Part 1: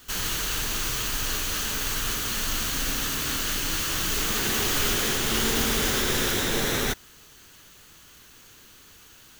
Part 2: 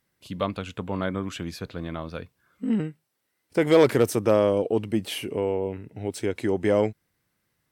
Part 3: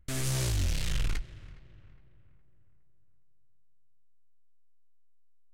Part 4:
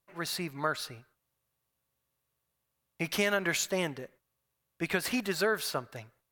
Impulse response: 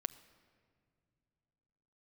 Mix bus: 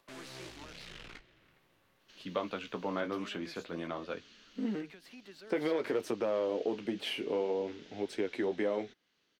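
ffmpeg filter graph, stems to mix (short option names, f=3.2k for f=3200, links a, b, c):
-filter_complex "[0:a]lowpass=f=5.8k:w=0.5412,lowpass=f=5.8k:w=1.3066,equalizer=f=970:w=0.75:g=-14.5,acompressor=threshold=-36dB:ratio=2.5,adelay=2000,volume=-17dB[a];[1:a]alimiter=limit=-13dB:level=0:latency=1:release=107,adelay=1950,volume=1dB[b];[2:a]dynaudnorm=f=160:g=13:m=4dB,volume=-6dB[c];[3:a]acompressor=mode=upward:threshold=-38dB:ratio=2.5,volume=-9.5dB[d];[a][d]amix=inputs=2:normalize=0,acrossover=split=340|3000[e][f][g];[f]acompressor=threshold=-51dB:ratio=6[h];[e][h][g]amix=inputs=3:normalize=0,alimiter=level_in=15dB:limit=-24dB:level=0:latency=1:release=294,volume=-15dB,volume=0dB[i];[b][c]amix=inputs=2:normalize=0,flanger=delay=9.2:depth=9.3:regen=-40:speed=0.49:shape=triangular,acompressor=threshold=-27dB:ratio=6,volume=0dB[j];[i][j]amix=inputs=2:normalize=0,acrossover=split=210 4700:gain=0.0794 1 0.178[k][l][m];[k][l][m]amix=inputs=3:normalize=0"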